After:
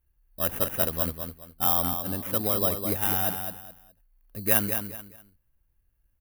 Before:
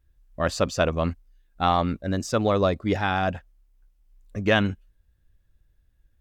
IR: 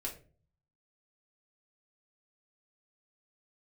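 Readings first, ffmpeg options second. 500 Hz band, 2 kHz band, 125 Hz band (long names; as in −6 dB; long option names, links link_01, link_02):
−7.5 dB, −8.0 dB, −7.0 dB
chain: -af "aecho=1:1:208|416|624:0.447|0.121|0.0326,acrusher=samples=10:mix=1:aa=0.000001,aexciter=amount=11.4:drive=2.7:freq=10000,volume=-8dB"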